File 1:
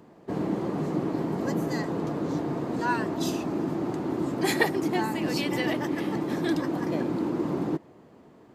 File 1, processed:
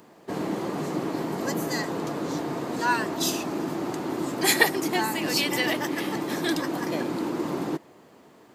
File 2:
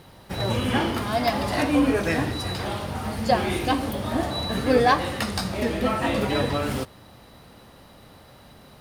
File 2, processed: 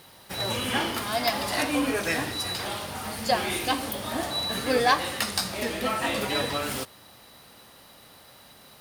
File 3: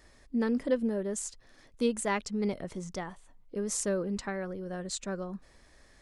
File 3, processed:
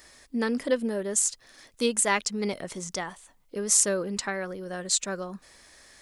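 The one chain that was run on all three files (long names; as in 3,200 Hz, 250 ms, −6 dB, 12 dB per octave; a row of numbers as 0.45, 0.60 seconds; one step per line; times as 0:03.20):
spectral tilt +2.5 dB per octave
loudness normalisation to −27 LKFS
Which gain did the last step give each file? +3.0, −2.0, +5.5 decibels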